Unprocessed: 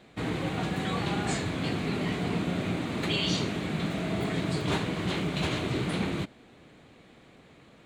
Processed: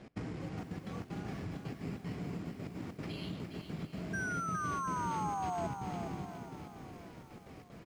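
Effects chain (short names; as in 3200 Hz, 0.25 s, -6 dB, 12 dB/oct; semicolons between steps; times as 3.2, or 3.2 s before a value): low shelf 300 Hz +7 dB; compressor 12:1, threshold -38 dBFS, peak gain reduction 18.5 dB; step gate "x.xxxxxx.x.x" 191 bpm -24 dB; painted sound fall, 4.13–5.67, 660–1600 Hz -37 dBFS; careless resampling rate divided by 6×, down filtered, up hold; air absorption 87 m; on a send: feedback echo 0.709 s, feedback 46%, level -14 dB; on the sum: lo-fi delay 0.412 s, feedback 35%, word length 10-bit, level -7 dB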